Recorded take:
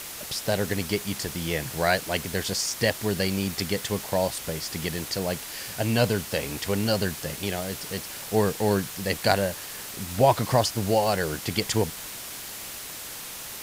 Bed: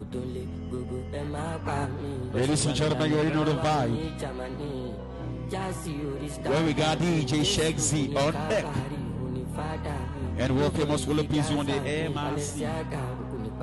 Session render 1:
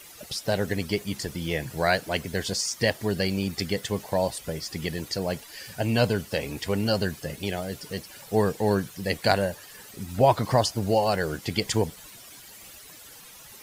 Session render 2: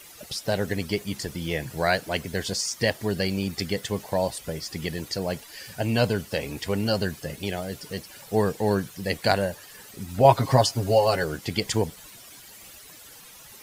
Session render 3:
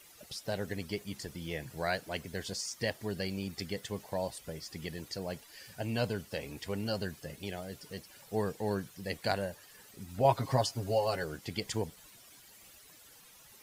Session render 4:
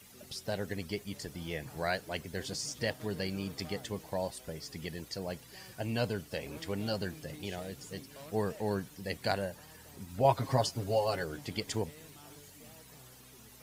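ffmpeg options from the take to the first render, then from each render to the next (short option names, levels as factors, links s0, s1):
-af "afftdn=nr=13:nf=-38"
-filter_complex "[0:a]asettb=1/sr,asplit=3[s0][s1][s2];[s0]atrim=end=10.244[s3];[s1]atrim=start=10.24:end=11.24,asetpts=PTS-STARTPTS,afade=t=in:d=0.004:c=qsin,afade=t=out:st=0.996:d=0.004:c=qsin,aecho=1:1:7.4:0.79,atrim=end_sample=44100[s4];[s2]atrim=start=11.236[s5];[s3][s4]acrossfade=d=0.004:c1=hsin:c2=qsin[s6];[s6][s5]acrossfade=d=0.004:c1=qsin:c2=hsin"
-af "volume=0.316"
-filter_complex "[1:a]volume=0.0531[s0];[0:a][s0]amix=inputs=2:normalize=0"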